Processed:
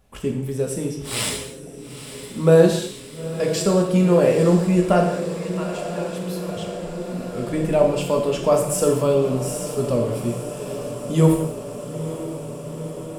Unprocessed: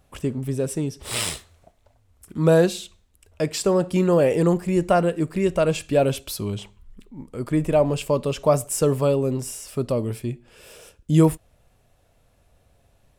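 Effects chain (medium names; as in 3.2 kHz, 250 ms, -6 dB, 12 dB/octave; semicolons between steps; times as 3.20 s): 5.04–6.57 s: ladder high-pass 810 Hz, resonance 55%; on a send: echo that smears into a reverb 908 ms, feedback 77%, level -12 dB; on the sum: gated-style reverb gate 270 ms falling, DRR 1 dB; trim -1 dB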